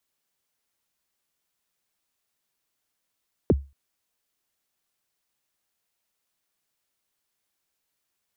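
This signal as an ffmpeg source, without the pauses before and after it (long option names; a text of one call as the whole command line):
ffmpeg -f lavfi -i "aevalsrc='0.266*pow(10,-3*t/0.28)*sin(2*PI*(520*0.033/log(69/520)*(exp(log(69/520)*min(t,0.033)/0.033)-1)+69*max(t-0.033,0)))':duration=0.23:sample_rate=44100" out.wav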